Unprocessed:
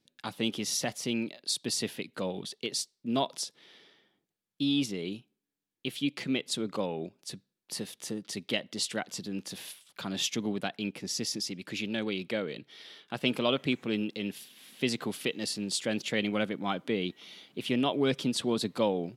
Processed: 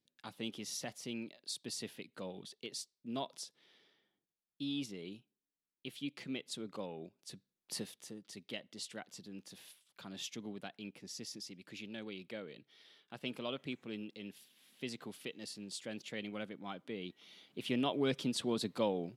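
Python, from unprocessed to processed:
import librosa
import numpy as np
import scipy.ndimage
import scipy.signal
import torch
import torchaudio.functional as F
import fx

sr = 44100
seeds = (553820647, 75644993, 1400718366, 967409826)

y = fx.gain(x, sr, db=fx.line((7.13, -11.0), (7.77, -4.0), (8.1, -13.0), (16.93, -13.0), (17.66, -6.0)))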